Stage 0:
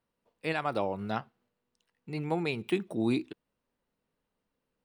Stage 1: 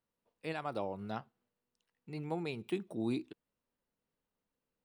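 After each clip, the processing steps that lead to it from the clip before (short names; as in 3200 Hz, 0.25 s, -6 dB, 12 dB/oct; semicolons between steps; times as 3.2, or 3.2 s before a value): dynamic EQ 2000 Hz, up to -4 dB, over -48 dBFS, Q 1; gain -6.5 dB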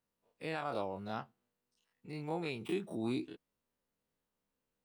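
spectral dilation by 60 ms; gain -3 dB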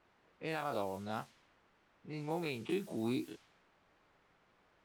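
requantised 10-bit, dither triangular; low-pass opened by the level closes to 1300 Hz, open at -34.5 dBFS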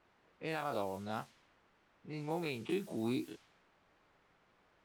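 nothing audible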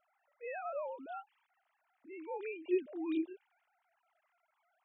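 sine-wave speech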